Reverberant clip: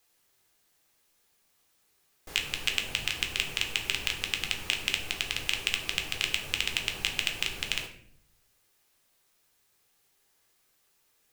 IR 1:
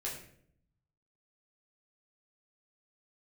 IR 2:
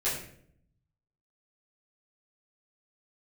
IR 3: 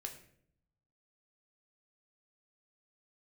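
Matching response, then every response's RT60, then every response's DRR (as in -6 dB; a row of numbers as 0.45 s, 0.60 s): 3; 0.65 s, 0.60 s, 0.65 s; -5.5 dB, -12.0 dB, 3.0 dB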